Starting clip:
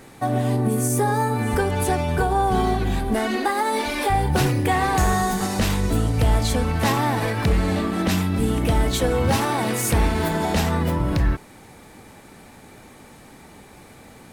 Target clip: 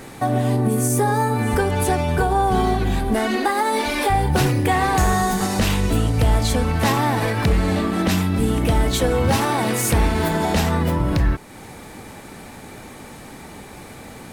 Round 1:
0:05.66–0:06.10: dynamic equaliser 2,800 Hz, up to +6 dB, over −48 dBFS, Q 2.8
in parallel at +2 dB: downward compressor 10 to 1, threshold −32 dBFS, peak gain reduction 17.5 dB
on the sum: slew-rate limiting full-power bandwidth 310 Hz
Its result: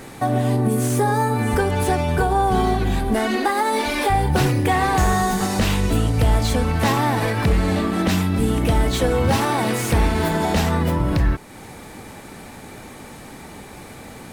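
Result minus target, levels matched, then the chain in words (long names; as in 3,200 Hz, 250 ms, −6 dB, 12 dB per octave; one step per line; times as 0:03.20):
slew-rate limiting: distortion +19 dB
0:05.66–0:06.10: dynamic equaliser 2,800 Hz, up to +6 dB, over −48 dBFS, Q 2.8
in parallel at +2 dB: downward compressor 10 to 1, threshold −32 dBFS, peak gain reduction 17.5 dB
on the sum: slew-rate limiting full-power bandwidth 1,199 Hz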